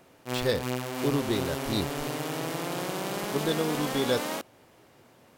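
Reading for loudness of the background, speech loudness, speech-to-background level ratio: -32.5 LUFS, -31.0 LUFS, 1.5 dB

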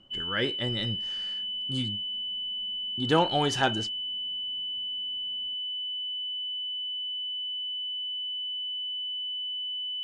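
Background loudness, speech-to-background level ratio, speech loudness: -30.5 LUFS, 1.0 dB, -29.5 LUFS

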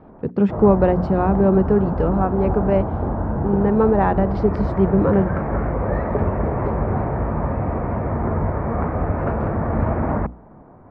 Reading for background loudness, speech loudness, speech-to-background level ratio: -23.5 LUFS, -19.0 LUFS, 4.5 dB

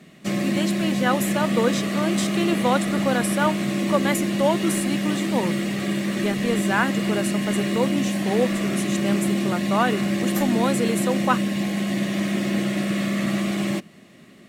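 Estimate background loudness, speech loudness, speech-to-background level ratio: -24.0 LUFS, -26.0 LUFS, -2.0 dB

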